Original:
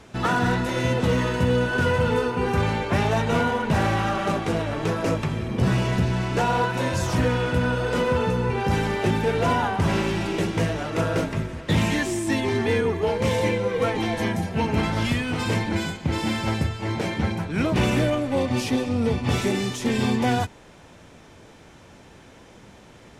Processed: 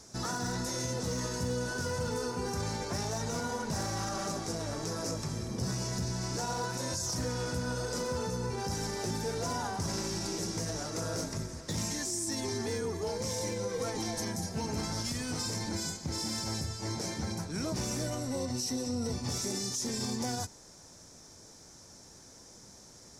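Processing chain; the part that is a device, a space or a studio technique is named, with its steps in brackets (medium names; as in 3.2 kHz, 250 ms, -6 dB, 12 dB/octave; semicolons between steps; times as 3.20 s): 18.06–19.14 s: rippled EQ curve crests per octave 2, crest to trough 9 dB; over-bright horn tweeter (resonant high shelf 4 kHz +11.5 dB, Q 3; peak limiter -16.5 dBFS, peak gain reduction 11 dB); trim -9 dB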